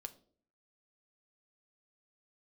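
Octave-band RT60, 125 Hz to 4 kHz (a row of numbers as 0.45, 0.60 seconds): 0.65, 0.70, 0.60, 0.45, 0.30, 0.35 seconds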